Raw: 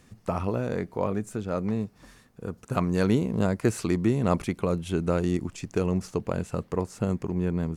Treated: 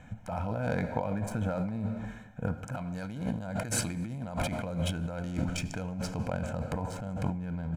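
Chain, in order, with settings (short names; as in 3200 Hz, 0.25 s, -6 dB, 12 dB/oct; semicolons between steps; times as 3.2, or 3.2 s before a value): Wiener smoothing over 9 samples; comb 1.3 ms, depth 91%; non-linear reverb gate 0.49 s falling, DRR 11.5 dB; negative-ratio compressor -31 dBFS, ratio -1; low shelf 250 Hz -3.5 dB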